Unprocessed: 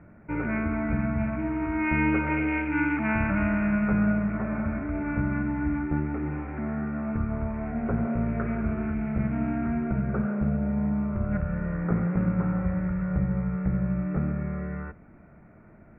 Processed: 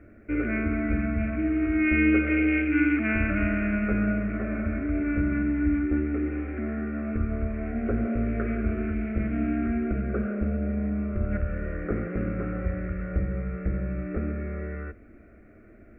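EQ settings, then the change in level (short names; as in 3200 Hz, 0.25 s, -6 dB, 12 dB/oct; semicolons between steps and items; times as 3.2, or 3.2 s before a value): bell 510 Hz -2 dB; fixed phaser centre 380 Hz, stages 4; +5.5 dB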